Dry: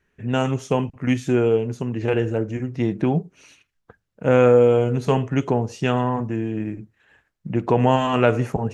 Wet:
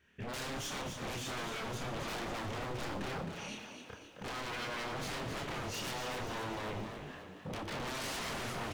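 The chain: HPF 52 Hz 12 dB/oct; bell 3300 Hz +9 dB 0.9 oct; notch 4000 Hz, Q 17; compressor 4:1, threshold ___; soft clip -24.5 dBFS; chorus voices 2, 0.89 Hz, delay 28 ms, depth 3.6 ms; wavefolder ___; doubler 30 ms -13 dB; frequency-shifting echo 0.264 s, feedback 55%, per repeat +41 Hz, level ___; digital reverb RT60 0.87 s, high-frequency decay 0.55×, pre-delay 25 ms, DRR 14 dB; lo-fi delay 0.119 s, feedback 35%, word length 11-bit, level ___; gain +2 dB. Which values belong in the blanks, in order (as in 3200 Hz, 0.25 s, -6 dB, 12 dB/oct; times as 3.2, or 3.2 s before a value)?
-23 dBFS, -38 dBFS, -7.5 dB, -13 dB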